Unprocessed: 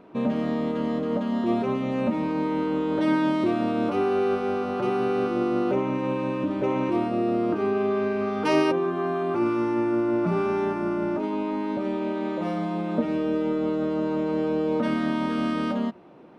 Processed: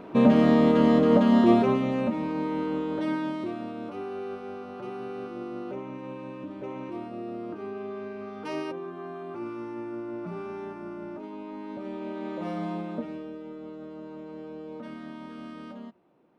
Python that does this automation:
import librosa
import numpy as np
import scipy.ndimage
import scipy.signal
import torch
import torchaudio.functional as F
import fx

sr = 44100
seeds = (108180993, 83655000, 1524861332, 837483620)

y = fx.gain(x, sr, db=fx.line((1.39, 7.0), (2.15, -3.5), (2.74, -3.5), (3.79, -12.0), (11.39, -12.0), (12.7, -3.5), (13.37, -15.5)))